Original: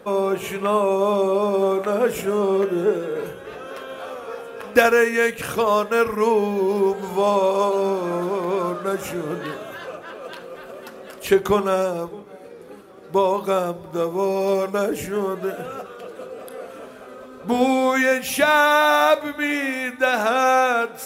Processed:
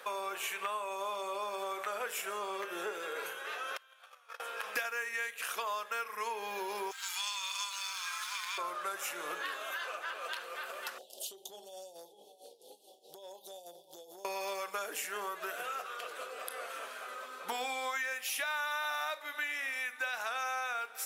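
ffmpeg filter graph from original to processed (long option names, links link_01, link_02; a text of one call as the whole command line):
ffmpeg -i in.wav -filter_complex "[0:a]asettb=1/sr,asplit=3[link_01][link_02][link_03];[link_01]atrim=end=3.774[link_04];[link_02]atrim=start=3.77:end=4.4,asetpts=PTS-STARTPTS,afade=type=in:duration=0.004:curve=qsin,afade=type=out:start_time=0.626:duration=0.004:curve=qsin,agate=range=-23dB:threshold=-30dB:ratio=16:release=100:detection=peak,highpass=frequency=1100:poles=1[link_05];[link_03]atrim=start=4.396[link_06];[link_04][link_05]acrossfade=duration=0.004:curve1=hsin:curve2=qsin[link_07];[link_07][link_06]acrossfade=duration=0.004:curve1=qsin:curve2=hsin,asettb=1/sr,asplit=3[link_08][link_09][link_10];[link_08]atrim=end=6.914[link_11];[link_09]atrim=start=6.91:end=8.58,asetpts=PTS-STARTPTS,afade=type=in:duration=0.004:curve=qsin,afade=type=out:start_time=1.666:duration=0.004:curve=qsin,highpass=frequency=1300:width=0.5412,highpass=frequency=1300:width=1.3066,equalizer=frequency=5200:width_type=o:width=2:gain=10.5,aeval=exprs='sgn(val(0))*max(abs(val(0))-0.00355,0)':channel_layout=same[link_12];[link_10]atrim=start=8.576[link_13];[link_11][link_12]acrossfade=duration=0.004:curve1=hsin:curve2=qsin[link_14];[link_14][link_13]acrossfade=duration=0.004:curve1=qsin:curve2=hsin,asettb=1/sr,asplit=3[link_15][link_16][link_17];[link_15]atrim=end=10.984[link_18];[link_16]atrim=start=10.98:end=14.25,asetpts=PTS-STARTPTS,afade=type=in:duration=0.004:curve=qsin,afade=type=out:start_time=3.266:duration=0.004:curve=qsin,tremolo=f=4.7:d=0.81,asuperstop=centerf=1600:order=12:qfactor=0.69,acompressor=threshold=-35dB:ratio=16:attack=3.2:release=140:knee=1:detection=peak[link_19];[link_17]atrim=start=14.246[link_20];[link_18][link_19]acrossfade=duration=0.004:curve1=hsin:curve2=qsin[link_21];[link_21][link_20]acrossfade=duration=0.004:curve1=qsin:curve2=hsin,highpass=1200,acompressor=threshold=-39dB:ratio=5,volume=3.5dB" out.wav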